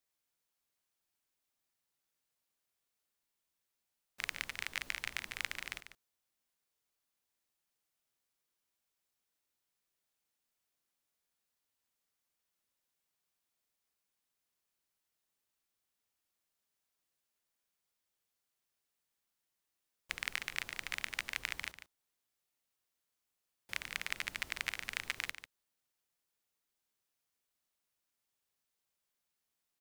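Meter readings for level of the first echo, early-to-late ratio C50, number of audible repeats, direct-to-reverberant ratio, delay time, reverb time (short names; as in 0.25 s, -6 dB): -11.5 dB, none, 1, none, 0.145 s, none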